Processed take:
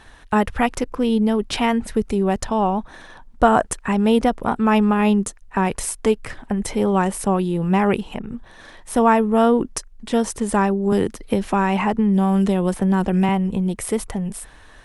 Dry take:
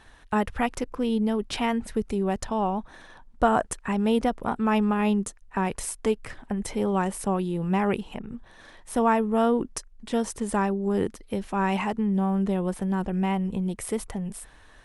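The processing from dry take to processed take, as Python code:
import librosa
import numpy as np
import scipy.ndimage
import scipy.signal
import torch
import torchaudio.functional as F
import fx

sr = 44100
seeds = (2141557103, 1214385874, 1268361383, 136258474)

y = fx.band_squash(x, sr, depth_pct=100, at=(10.92, 13.29))
y = F.gain(torch.from_numpy(y), 6.5).numpy()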